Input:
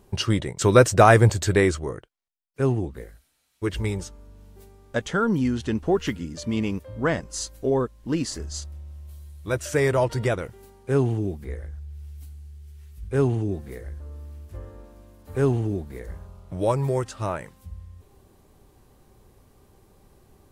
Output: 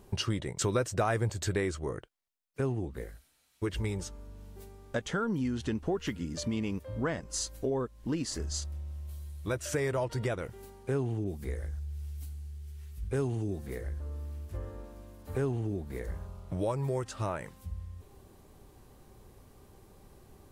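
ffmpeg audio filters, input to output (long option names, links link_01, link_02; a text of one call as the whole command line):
ffmpeg -i in.wav -filter_complex "[0:a]acompressor=threshold=-31dB:ratio=3,asettb=1/sr,asplit=3[link_01][link_02][link_03];[link_01]atrim=end=11.244[link_04];[link_02]atrim=start=11.24:end=13.67,asetpts=PTS-STARTPTS,afade=type=in:duration=0.004:curve=qsin,afade=type=out:start_time=2.426:duration=0.004:curve=qsin,adynamicequalizer=threshold=0.001:dfrequency=3900:dqfactor=0.7:tfrequency=3900:tqfactor=0.7:attack=5:release=100:ratio=0.375:range=3.5:mode=boostabove:tftype=highshelf[link_05];[link_03]atrim=start=13.666[link_06];[link_04][link_05]acrossfade=duration=0.004:curve1=hsin:curve2=qsin[link_07];[link_07][link_06]acrossfade=duration=0.004:curve1=qsin:curve2=hsin" out.wav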